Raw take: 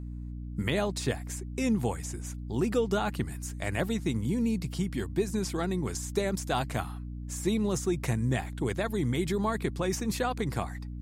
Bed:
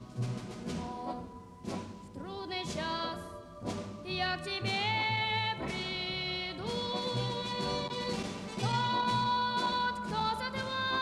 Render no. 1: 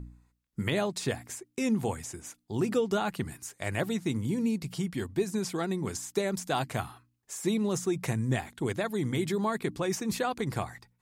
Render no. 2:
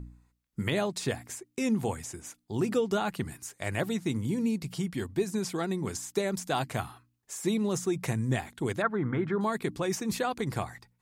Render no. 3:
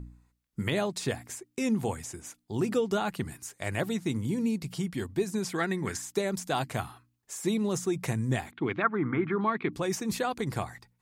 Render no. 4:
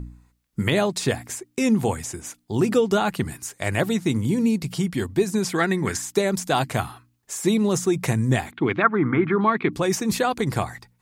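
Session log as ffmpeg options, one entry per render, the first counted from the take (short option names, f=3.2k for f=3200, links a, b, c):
-af "bandreject=f=60:t=h:w=4,bandreject=f=120:t=h:w=4,bandreject=f=180:t=h:w=4,bandreject=f=240:t=h:w=4,bandreject=f=300:t=h:w=4"
-filter_complex "[0:a]asettb=1/sr,asplit=3[a][b][c];[a]atrim=end=8.824[d];[b]atrim=start=8.82:end=9.41,asetpts=PTS-STARTPTS,afade=t=in:d=0.004:c=qsin,afade=t=out:st=0.586:d=0.004:c=qsin,lowpass=f=1.4k:t=q:w=3.8[e];[c]atrim=start=9.406[f];[d][e]acrossfade=d=0.004:c1=hsin:c2=qsin[g];[g][f]acrossfade=d=0.004:c1=qsin:c2=hsin"
-filter_complex "[0:a]asettb=1/sr,asplit=3[a][b][c];[a]atrim=end=5.524[d];[b]atrim=start=5.52:end=6.02,asetpts=PTS-STARTPTS,afade=t=in:d=0.004:c=qsin,afade=t=out:st=0.496:d=0.004:c=qsin,equalizer=f=1.8k:w=1.9:g=12[e];[c]atrim=start=6.016[f];[d][e]acrossfade=d=0.004:c1=hsin:c2=qsin[g];[g][f]acrossfade=d=0.004:c1=qsin:c2=hsin,asettb=1/sr,asplit=3[h][i][j];[h]atrim=end=8.514[k];[i]atrim=start=8.51:end=9.73,asetpts=PTS-STARTPTS,afade=t=in:d=0.004:c=qsin,afade=t=out:st=1.216:d=0.004:c=qsin,highpass=120,equalizer=f=310:t=q:w=4:g=5,equalizer=f=550:t=q:w=4:g=-7,equalizer=f=1.2k:t=q:w=4:g=6,equalizer=f=2.3k:t=q:w=4:g=7,lowpass=f=3.4k:w=0.5412,lowpass=f=3.4k:w=1.3066[l];[j]atrim=start=9.726[m];[k][l]acrossfade=d=0.004:c1=hsin:c2=qsin[n];[n][m]acrossfade=d=0.004:c1=qsin:c2=hsin"
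-af "volume=8dB"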